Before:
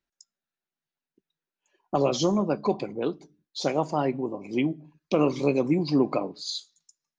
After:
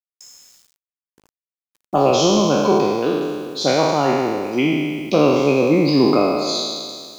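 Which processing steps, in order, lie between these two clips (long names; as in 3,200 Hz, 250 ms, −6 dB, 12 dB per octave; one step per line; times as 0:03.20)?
peak hold with a decay on every bin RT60 1.94 s
parametric band 68 Hz −4.5 dB 0.75 octaves
bit reduction 9 bits
level +5 dB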